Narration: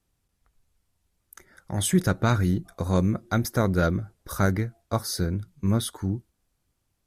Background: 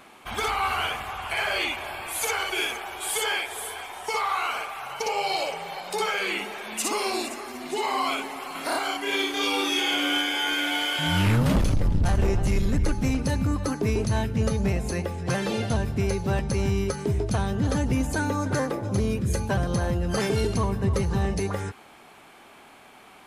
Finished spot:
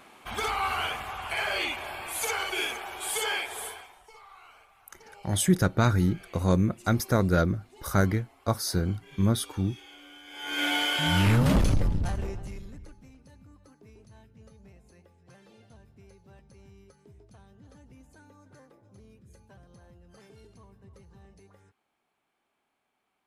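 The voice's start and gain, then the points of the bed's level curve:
3.55 s, -0.5 dB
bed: 3.67 s -3 dB
4.13 s -25.5 dB
10.21 s -25.5 dB
10.63 s -0.5 dB
11.76 s -0.5 dB
13.1 s -29 dB

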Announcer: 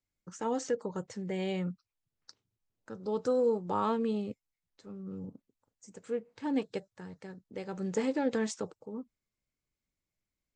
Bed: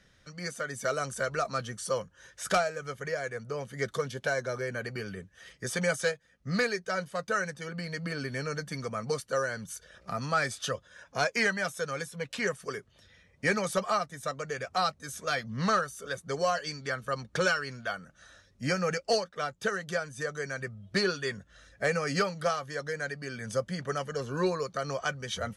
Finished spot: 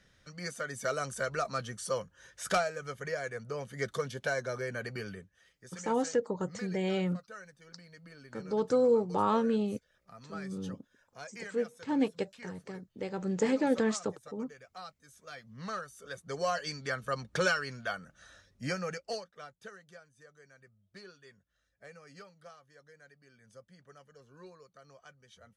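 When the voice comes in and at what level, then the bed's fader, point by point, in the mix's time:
5.45 s, +2.5 dB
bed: 5.1 s -2.5 dB
5.55 s -18 dB
15.18 s -18 dB
16.66 s -1.5 dB
18.42 s -1.5 dB
20.12 s -23.5 dB

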